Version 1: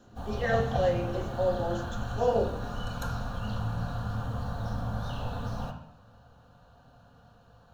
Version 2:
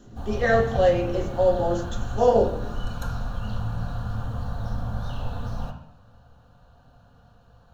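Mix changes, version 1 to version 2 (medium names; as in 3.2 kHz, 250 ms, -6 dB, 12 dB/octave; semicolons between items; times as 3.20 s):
speech +7.5 dB; master: add bass shelf 65 Hz +10 dB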